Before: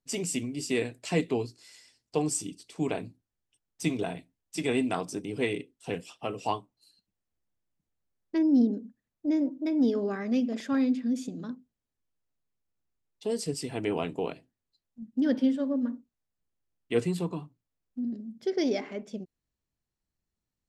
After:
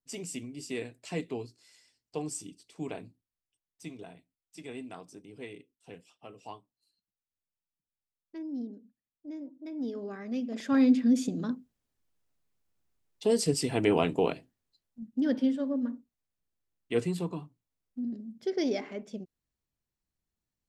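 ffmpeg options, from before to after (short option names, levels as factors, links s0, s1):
-af "volume=3.98,afade=t=out:st=3.06:d=0.8:silence=0.446684,afade=t=in:st=9.48:d=0.99:silence=0.375837,afade=t=in:st=10.47:d=0.47:silence=0.281838,afade=t=out:st=14.32:d=0.89:silence=0.446684"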